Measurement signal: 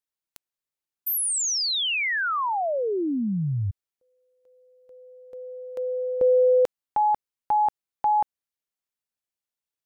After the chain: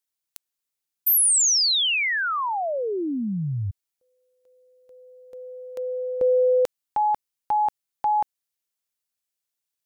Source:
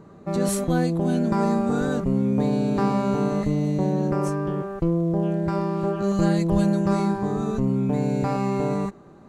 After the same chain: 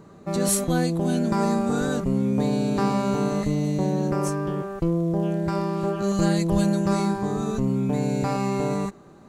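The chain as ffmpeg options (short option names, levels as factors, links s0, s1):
-af "highshelf=f=3000:g=8.5,volume=0.891"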